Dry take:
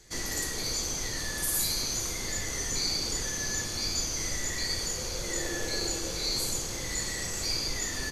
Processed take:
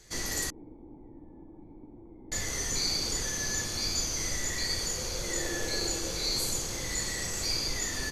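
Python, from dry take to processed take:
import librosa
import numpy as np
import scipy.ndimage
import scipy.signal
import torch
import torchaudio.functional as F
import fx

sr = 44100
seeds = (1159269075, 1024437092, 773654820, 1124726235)

y = fx.formant_cascade(x, sr, vowel='u', at=(0.5, 2.32))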